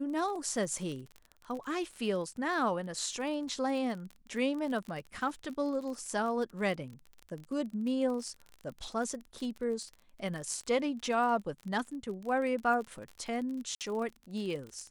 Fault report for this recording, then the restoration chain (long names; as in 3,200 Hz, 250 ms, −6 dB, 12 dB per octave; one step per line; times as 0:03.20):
surface crackle 34 per second −38 dBFS
0:13.75–0:13.81: drop-out 58 ms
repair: click removal
repair the gap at 0:13.75, 58 ms